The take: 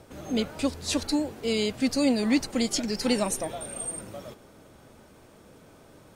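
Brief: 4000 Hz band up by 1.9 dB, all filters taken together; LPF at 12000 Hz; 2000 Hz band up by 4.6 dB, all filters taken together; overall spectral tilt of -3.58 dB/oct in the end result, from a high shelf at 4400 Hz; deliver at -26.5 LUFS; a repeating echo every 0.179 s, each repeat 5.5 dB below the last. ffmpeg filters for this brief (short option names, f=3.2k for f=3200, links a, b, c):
-af "lowpass=12k,equalizer=f=2k:t=o:g=5.5,equalizer=f=4k:t=o:g=4,highshelf=f=4.4k:g=-5.5,aecho=1:1:179|358|537|716|895|1074|1253:0.531|0.281|0.149|0.079|0.0419|0.0222|0.0118,volume=-1dB"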